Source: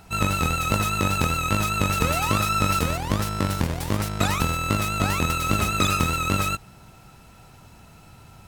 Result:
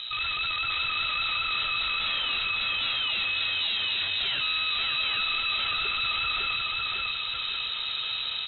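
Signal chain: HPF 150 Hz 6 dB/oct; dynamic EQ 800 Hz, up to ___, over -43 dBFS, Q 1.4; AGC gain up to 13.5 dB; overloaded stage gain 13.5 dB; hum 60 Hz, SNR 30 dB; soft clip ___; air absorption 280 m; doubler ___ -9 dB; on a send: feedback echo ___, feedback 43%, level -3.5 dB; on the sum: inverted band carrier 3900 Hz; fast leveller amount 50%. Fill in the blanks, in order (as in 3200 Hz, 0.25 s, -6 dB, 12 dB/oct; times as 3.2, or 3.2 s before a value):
+6 dB, -29.5 dBFS, 13 ms, 0.552 s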